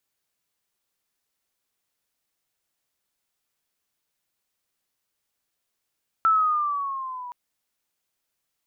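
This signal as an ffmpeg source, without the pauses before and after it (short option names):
-f lavfi -i "aevalsrc='pow(10,(-15-19*t/1.07)/20)*sin(2*PI*1330*1.07/(-5.5*log(2)/12)*(exp(-5.5*log(2)/12*t/1.07)-1))':d=1.07:s=44100"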